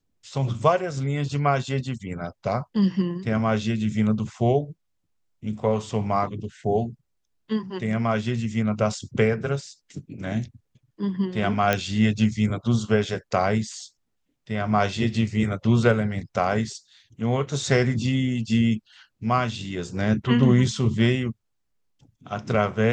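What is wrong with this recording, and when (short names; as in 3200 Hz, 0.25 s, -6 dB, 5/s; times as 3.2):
11.73 pop -8 dBFS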